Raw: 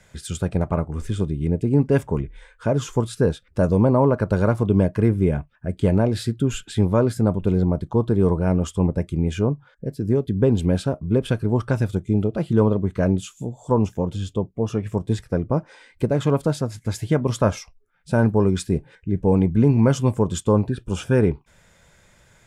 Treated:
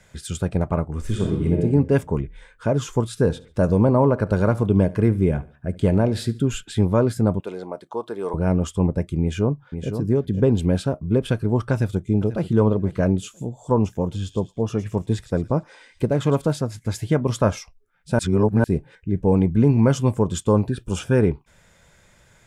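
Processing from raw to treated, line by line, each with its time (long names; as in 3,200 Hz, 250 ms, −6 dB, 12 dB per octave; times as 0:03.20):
0:01.00–0:01.61: thrown reverb, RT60 1 s, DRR −1 dB
0:03.08–0:06.47: repeating echo 71 ms, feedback 40%, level −20 dB
0:07.40–0:08.34: high-pass filter 570 Hz
0:09.21–0:09.93: delay throw 510 ms, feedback 15%, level −8 dB
0:11.72–0:12.52: delay throw 490 ms, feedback 15%, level −15 dB
0:13.90–0:16.56: delay with a high-pass on its return 111 ms, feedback 41%, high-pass 3,300 Hz, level −9 dB
0:18.19–0:18.64: reverse
0:20.48–0:20.99: high-shelf EQ 4,600 Hz +6.5 dB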